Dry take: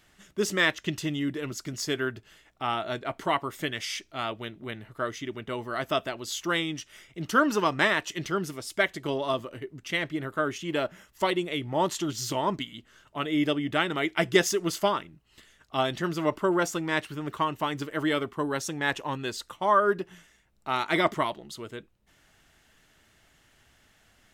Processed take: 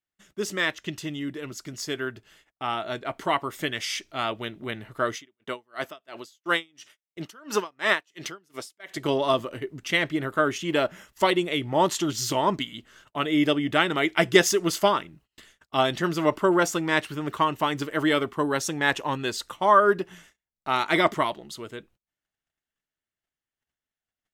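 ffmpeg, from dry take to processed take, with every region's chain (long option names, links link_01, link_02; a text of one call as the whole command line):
ffmpeg -i in.wav -filter_complex "[0:a]asettb=1/sr,asplit=3[link_01][link_02][link_03];[link_01]atrim=end=5.154[link_04];[link_02]atrim=start=5.15:end=8.97,asetpts=PTS-STARTPTS,afade=type=in:duration=0.004:curve=qsin,afade=type=out:start_time=3.816:duration=0.004:curve=qsin,highpass=frequency=330:poles=1,aeval=exprs='val(0)*pow(10,-34*(0.5-0.5*cos(2*PI*2.9*n/s))/20)':channel_layout=same[link_05];[link_03]atrim=start=8.966[link_06];[link_04][link_05]acrossfade=duration=0.004:curve1=hsin:curve2=qsin[link_07];[link_07][link_06]acrossfade=duration=0.004:curve1=qsin:curve2=hsin,agate=range=-30dB:threshold=-57dB:ratio=16:detection=peak,lowshelf=frequency=150:gain=-4,dynaudnorm=framelen=630:gausssize=11:maxgain=9dB,volume=-2dB" out.wav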